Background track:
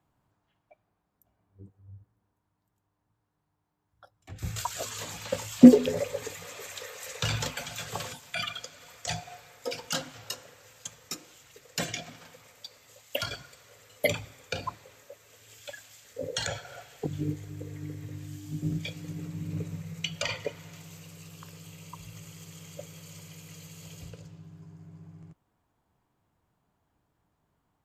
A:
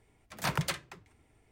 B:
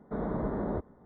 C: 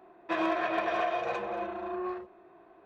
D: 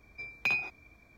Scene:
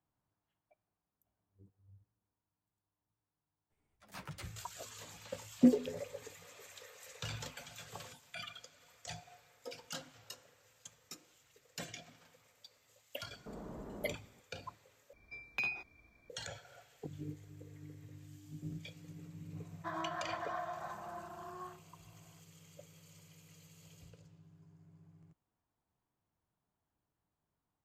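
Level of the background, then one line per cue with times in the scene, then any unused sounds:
background track −13 dB
0:03.70: mix in A −13.5 dB + string-ensemble chorus
0:13.35: mix in B −9 dB + downward compressor 2 to 1, threshold −39 dBFS
0:15.13: overwrite with D −7 dB
0:19.55: mix in C −7.5 dB + phaser with its sweep stopped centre 1,100 Hz, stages 4

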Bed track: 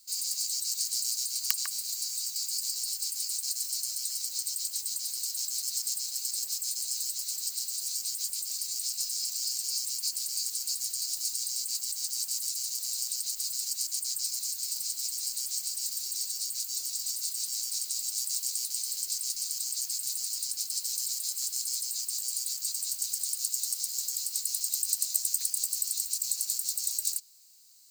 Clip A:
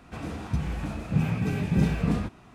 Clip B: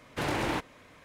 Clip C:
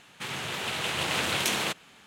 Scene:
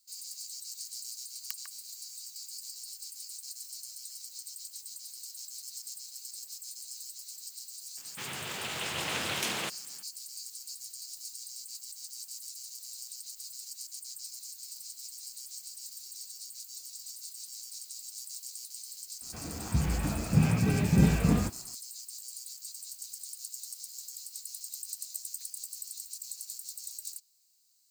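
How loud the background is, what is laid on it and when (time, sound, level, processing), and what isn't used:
bed track −11 dB
0:07.97: mix in C −5.5 dB
0:19.21: mix in A −8.5 dB + automatic gain control gain up to 10.5 dB
not used: B

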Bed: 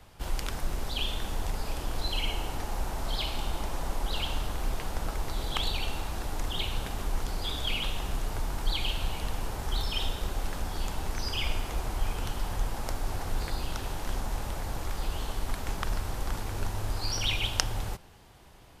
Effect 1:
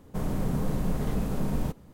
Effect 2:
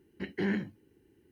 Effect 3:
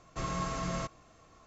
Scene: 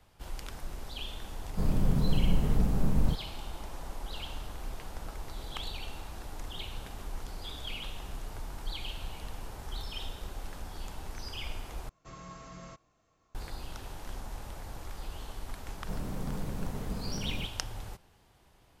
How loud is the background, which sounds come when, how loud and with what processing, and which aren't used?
bed −8.5 dB
0:01.43: mix in 1 −5 dB + low-shelf EQ 150 Hz +10.5 dB
0:11.89: overwrite with 3 −12.5 dB
0:15.74: mix in 1 −9 dB
not used: 2

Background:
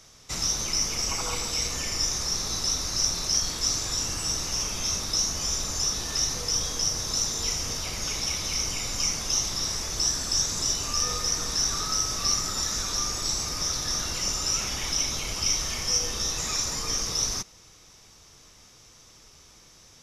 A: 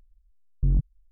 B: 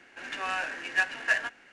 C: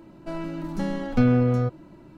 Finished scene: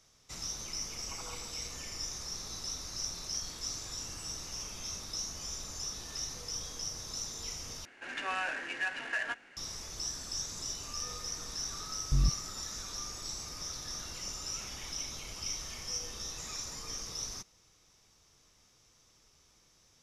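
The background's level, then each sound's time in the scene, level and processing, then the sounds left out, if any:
background −12.5 dB
0:07.85: overwrite with B −1.5 dB + brickwall limiter −23 dBFS
0:11.49: mix in A −5 dB
not used: C

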